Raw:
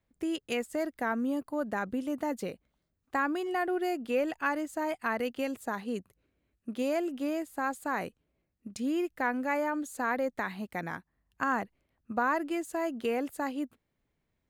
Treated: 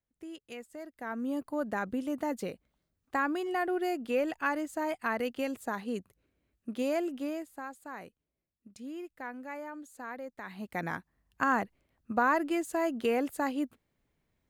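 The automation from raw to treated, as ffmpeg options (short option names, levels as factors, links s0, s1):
-af "volume=4.22,afade=t=in:st=0.95:d=0.48:silence=0.266073,afade=t=out:st=7.04:d=0.65:silence=0.298538,afade=t=in:st=10.41:d=0.45:silence=0.223872"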